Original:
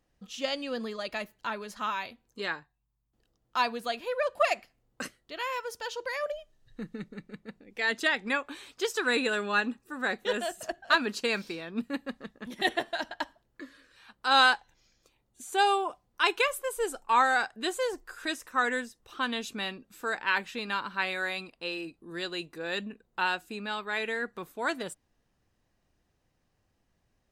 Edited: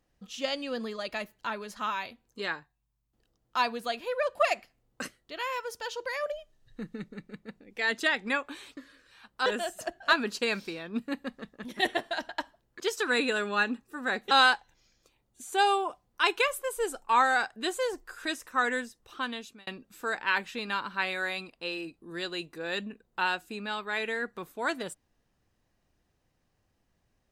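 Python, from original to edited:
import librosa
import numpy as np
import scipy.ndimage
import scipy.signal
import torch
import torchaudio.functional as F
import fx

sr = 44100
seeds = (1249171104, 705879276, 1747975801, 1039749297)

y = fx.edit(x, sr, fx.swap(start_s=8.77, length_s=1.51, other_s=13.62, other_length_s=0.69),
    fx.fade_out_span(start_s=18.85, length_s=0.82, curve='qsin'), tone=tone)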